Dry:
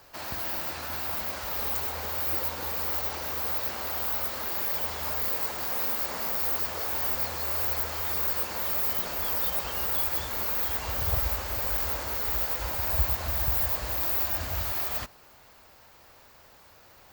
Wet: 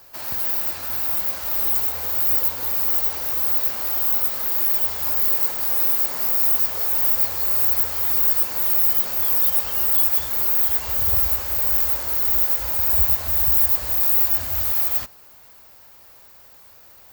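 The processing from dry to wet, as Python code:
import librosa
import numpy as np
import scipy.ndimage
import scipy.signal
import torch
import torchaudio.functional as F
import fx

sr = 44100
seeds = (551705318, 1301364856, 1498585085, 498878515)

y = fx.high_shelf(x, sr, hz=7600.0, db=11.0)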